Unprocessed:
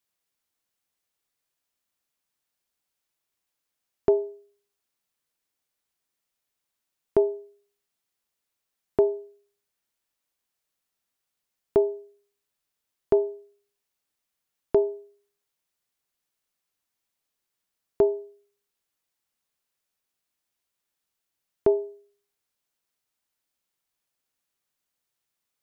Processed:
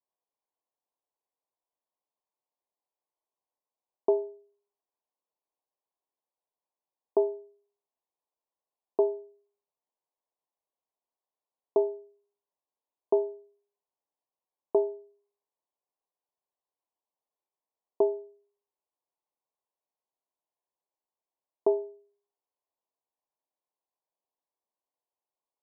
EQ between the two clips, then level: high-pass 460 Hz 12 dB/octave; steep low-pass 1.1 kHz 96 dB/octave; 0.0 dB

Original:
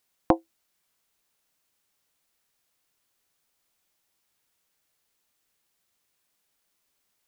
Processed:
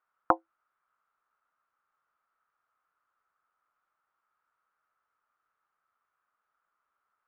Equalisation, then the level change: resonant low-pass 1.3 kHz, resonance Q 7.2; bass shelf 130 Hz -10 dB; peaking EQ 240 Hz -8 dB 2 oct; -3.5 dB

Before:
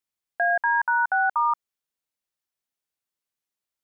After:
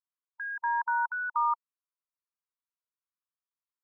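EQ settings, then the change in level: brick-wall FIR high-pass 920 Hz; low-pass 1.3 kHz 24 dB/octave; -2.5 dB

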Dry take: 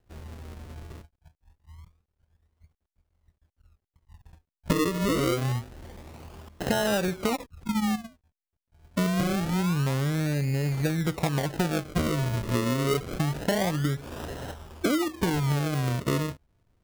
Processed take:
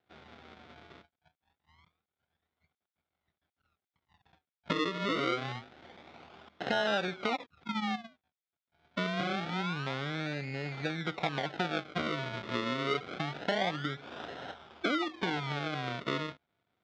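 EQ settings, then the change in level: cabinet simulation 190–5200 Hz, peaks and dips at 740 Hz +7 dB, 1.4 kHz +9 dB, 2.2 kHz +8 dB, 3.5 kHz +10 dB; -7.5 dB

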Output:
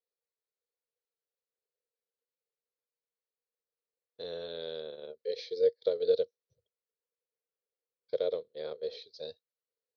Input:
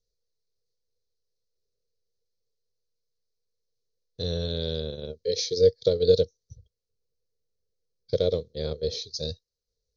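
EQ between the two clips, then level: high-pass 610 Hz 12 dB/octave; distance through air 430 m; 0.0 dB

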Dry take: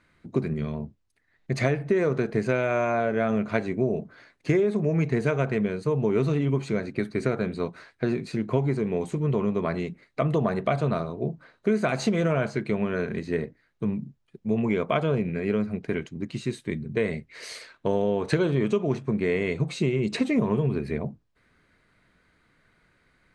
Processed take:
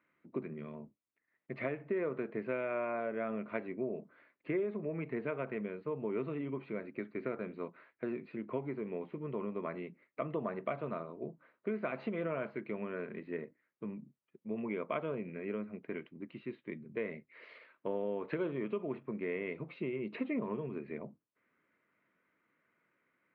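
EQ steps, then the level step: distance through air 220 m; cabinet simulation 300–2800 Hz, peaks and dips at 430 Hz -4 dB, 760 Hz -8 dB, 1.6 kHz -5 dB; -7.0 dB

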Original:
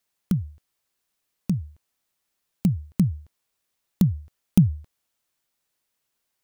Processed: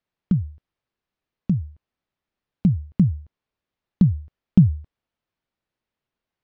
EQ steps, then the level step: distance through air 230 m; bass shelf 420 Hz +7 dB; -2.5 dB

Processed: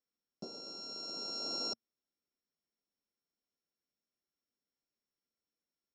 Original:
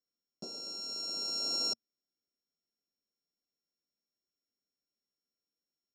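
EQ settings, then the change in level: distance through air 120 m; peaking EQ 2.8 kHz -3 dB 0.22 oct; +1.0 dB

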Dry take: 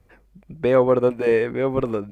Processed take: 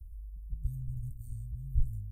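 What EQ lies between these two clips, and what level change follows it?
inverse Chebyshev band-stop 360–2400 Hz, stop band 80 dB; bass shelf 360 Hz +12 dB; +3.5 dB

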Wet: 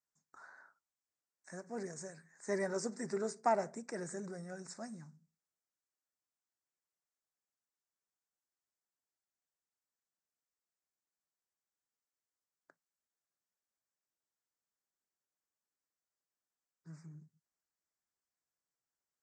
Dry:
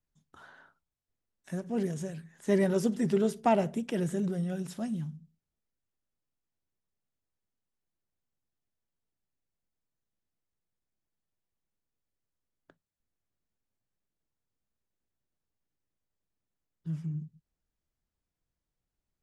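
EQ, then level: high-pass 1.3 kHz 6 dB/octave; Butterworth band-stop 3.1 kHz, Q 0.96; elliptic low-pass 8.2 kHz, stop band 40 dB; +2.0 dB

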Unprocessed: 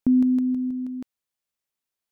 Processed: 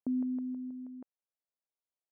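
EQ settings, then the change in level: band-pass filter 630 Hz, Q 1.3; distance through air 480 m; -4.0 dB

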